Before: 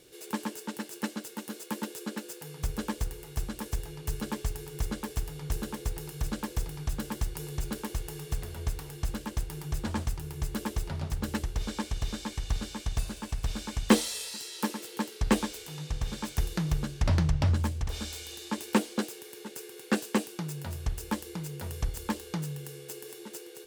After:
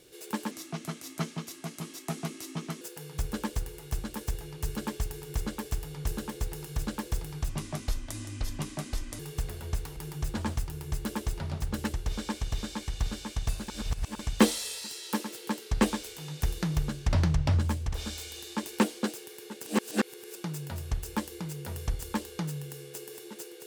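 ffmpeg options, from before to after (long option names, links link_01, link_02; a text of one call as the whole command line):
ffmpeg -i in.wav -filter_complex "[0:a]asplit=11[link_01][link_02][link_03][link_04][link_05][link_06][link_07][link_08][link_09][link_10][link_11];[link_01]atrim=end=0.514[link_12];[link_02]atrim=start=0.51:end=2.26,asetpts=PTS-STARTPTS,asetrate=33516,aresample=44100,atrim=end_sample=101546,asetpts=PTS-STARTPTS[link_13];[link_03]atrim=start=2.256:end=6.944[link_14];[link_04]atrim=start=6.94:end=8.13,asetpts=PTS-STARTPTS,asetrate=30870,aresample=44100[link_15];[link_05]atrim=start=8.126:end=8.902[link_16];[link_06]atrim=start=9.458:end=13.182[link_17];[link_07]atrim=start=13.178:end=13.692,asetpts=PTS-STARTPTS,areverse[link_18];[link_08]atrim=start=13.688:end=15.902[link_19];[link_09]atrim=start=16.348:end=19.582[link_20];[link_10]atrim=start=19.578:end=20.302,asetpts=PTS-STARTPTS,areverse[link_21];[link_11]atrim=start=20.298[link_22];[link_12][link_13]acrossfade=duration=0.004:curve1=hsin:curve2=hsin[link_23];[link_23][link_14]acrossfade=duration=0.004:curve1=hsin:curve2=hsin[link_24];[link_24][link_15]acrossfade=duration=0.004:curve1=hsin:curve2=hsin[link_25];[link_25][link_16]acrossfade=duration=0.004:curve1=hsin:curve2=hsin[link_26];[link_26][link_17]acrossfade=duration=0.004:curve1=hsin:curve2=hsin[link_27];[link_27][link_18]acrossfade=duration=0.004:curve1=hsin:curve2=hsin[link_28];[link_28][link_19]acrossfade=duration=0.004:curve1=hsin:curve2=hsin[link_29];[link_29][link_20]acrossfade=duration=0.004:curve1=hsin:curve2=hsin[link_30];[link_30][link_21]acrossfade=duration=0.004:curve1=hsin:curve2=hsin[link_31];[link_31][link_22]acrossfade=duration=0.004:curve1=hsin:curve2=hsin" out.wav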